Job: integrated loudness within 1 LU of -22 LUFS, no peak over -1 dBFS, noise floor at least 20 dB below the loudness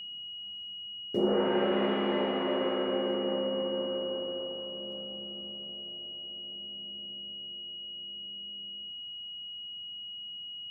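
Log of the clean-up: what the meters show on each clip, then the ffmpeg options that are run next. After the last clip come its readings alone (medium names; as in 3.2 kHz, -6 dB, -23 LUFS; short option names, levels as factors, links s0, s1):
steady tone 2.9 kHz; tone level -39 dBFS; loudness -33.5 LUFS; peak level -16.5 dBFS; loudness target -22.0 LUFS
-> -af "bandreject=f=2900:w=30"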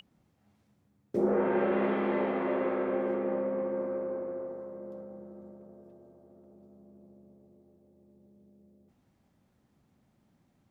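steady tone not found; loudness -31.0 LUFS; peak level -17.5 dBFS; loudness target -22.0 LUFS
-> -af "volume=2.82"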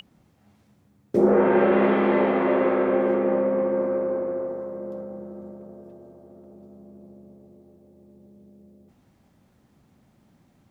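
loudness -22.0 LUFS; peak level -8.5 dBFS; noise floor -62 dBFS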